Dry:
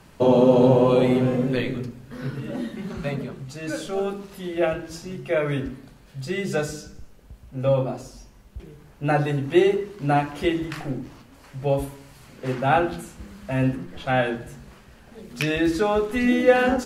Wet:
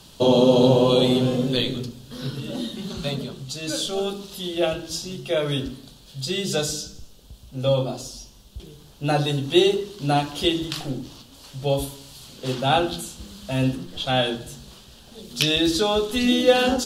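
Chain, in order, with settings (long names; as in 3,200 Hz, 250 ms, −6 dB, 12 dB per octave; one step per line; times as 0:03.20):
high shelf with overshoot 2,700 Hz +8.5 dB, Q 3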